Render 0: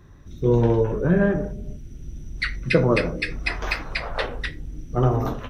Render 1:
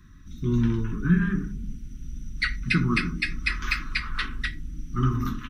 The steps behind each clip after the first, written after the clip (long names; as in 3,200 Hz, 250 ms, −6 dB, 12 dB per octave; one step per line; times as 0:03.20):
Chebyshev band-stop filter 310–1,200 Hz, order 3
mains-hum notches 50/100/150/200/250/300/350/400 Hz
comb filter 4.7 ms, depth 34%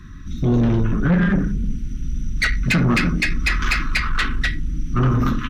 high-shelf EQ 7,800 Hz −11 dB
in parallel at −1 dB: brickwall limiter −19 dBFS, peak gain reduction 8.5 dB
on the sum: soft clipping −19.5 dBFS, distortion −11 dB
level +7 dB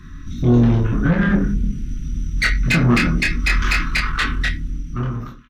fade-out on the ending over 1.17 s
double-tracking delay 25 ms −3.5 dB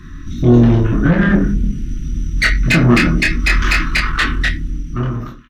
hollow resonant body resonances 330/630/1,800/2,900 Hz, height 6 dB
level +3.5 dB